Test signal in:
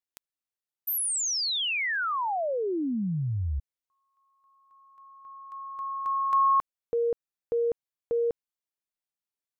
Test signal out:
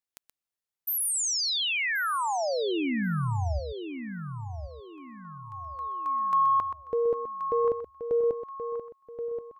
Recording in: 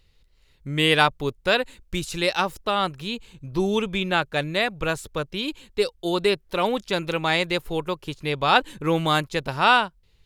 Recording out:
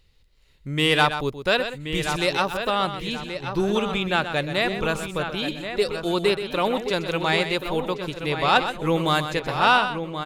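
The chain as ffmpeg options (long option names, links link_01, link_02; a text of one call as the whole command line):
ffmpeg -i in.wav -filter_complex "[0:a]asplit=2[link_01][link_02];[link_02]adelay=1078,lowpass=frequency=3500:poles=1,volume=-8.5dB,asplit=2[link_03][link_04];[link_04]adelay=1078,lowpass=frequency=3500:poles=1,volume=0.35,asplit=2[link_05][link_06];[link_06]adelay=1078,lowpass=frequency=3500:poles=1,volume=0.35,asplit=2[link_07][link_08];[link_08]adelay=1078,lowpass=frequency=3500:poles=1,volume=0.35[link_09];[link_03][link_05][link_07][link_09]amix=inputs=4:normalize=0[link_10];[link_01][link_10]amix=inputs=2:normalize=0,asoftclip=type=tanh:threshold=-5dB,asplit=2[link_11][link_12];[link_12]aecho=0:1:126:0.316[link_13];[link_11][link_13]amix=inputs=2:normalize=0" out.wav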